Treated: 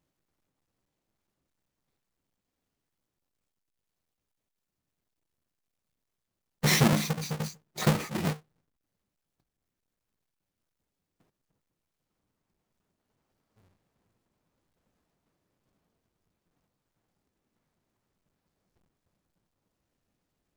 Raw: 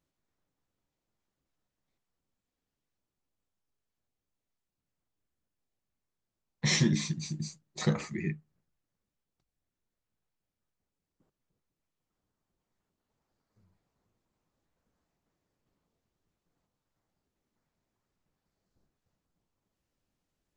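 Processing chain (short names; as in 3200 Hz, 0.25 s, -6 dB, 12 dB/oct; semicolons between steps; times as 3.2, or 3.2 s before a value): half-waves squared off; low shelf 66 Hz -7 dB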